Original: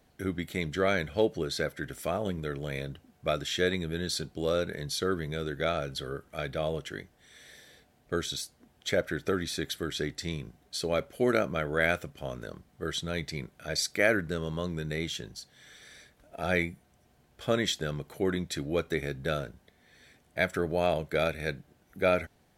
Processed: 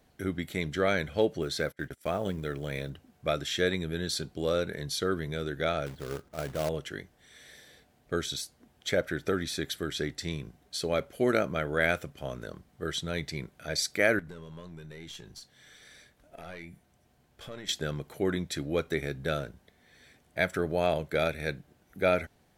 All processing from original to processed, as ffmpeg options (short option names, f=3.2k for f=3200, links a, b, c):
-filter_complex "[0:a]asettb=1/sr,asplit=3[a][b][c];[a]atrim=end=1.424[d];[b]atrim=start=1.42:end=2.9,asetpts=PTS-STARTPTS,afade=t=in:d=0.004:c=qsin,afade=t=out:st=1.476:d=0.004:c=qsin,agate=range=-24dB:threshold=-42dB:ratio=16:release=100:detection=peak,acrusher=bits=8:mode=log:mix=0:aa=0.000001[e];[c]atrim=start=2.896[f];[d][e]acrossfade=d=0.004:c1=hsin:c2=qsin[g];[g][f]acrossfade=d=0.004:c1=qsin:c2=hsin,asettb=1/sr,asplit=3[h][i][j];[h]atrim=end=5.864[k];[i]atrim=start=5.86:end=6.69,asetpts=PTS-STARTPTS,afade=t=in:d=0.004:c=qsin,afade=t=out:st=0.826:d=0.004:c=qsin,deesser=1,lowpass=1.3k,acrusher=bits=2:mode=log:mix=0:aa=0.000001[l];[j]atrim=start=6.686[m];[k][l]acrossfade=d=0.004:c1=hsin:c2=qsin[n];[n][m]acrossfade=d=0.004:c1=qsin:c2=hsin,asettb=1/sr,asplit=3[o][p][q];[o]atrim=end=14.194[r];[p]atrim=start=14.19:end=17.69,asetpts=PTS-STARTPTS,afade=t=in:d=0.004:c=qsin,afade=t=out:st=3.496:d=0.004:c=qsin,acompressor=threshold=-39dB:ratio=3:attack=3.2:release=140:knee=1:detection=peak,aeval=exprs='(tanh(35.5*val(0)+0.5)-tanh(0.5))/35.5':c=same,asplit=2[s][t];[t]adelay=24,volume=-14dB[u];[s][u]amix=inputs=2:normalize=0,atrim=end_sample=154350[v];[q]atrim=start=17.686[w];[r][v]acrossfade=d=0.004:c1=hsin:c2=qsin[x];[x][w]acrossfade=d=0.004:c1=qsin:c2=hsin"